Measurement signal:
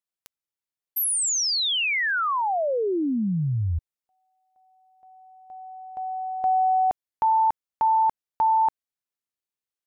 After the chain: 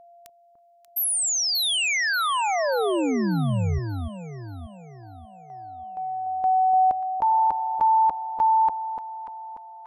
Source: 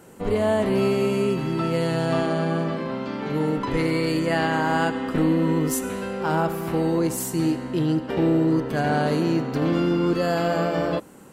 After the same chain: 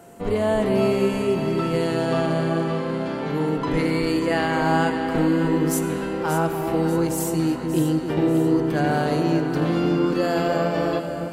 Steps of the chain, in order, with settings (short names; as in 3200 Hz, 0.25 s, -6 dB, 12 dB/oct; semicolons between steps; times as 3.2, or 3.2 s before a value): whine 690 Hz -48 dBFS; echo with dull and thin repeats by turns 0.293 s, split 930 Hz, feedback 65%, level -5.5 dB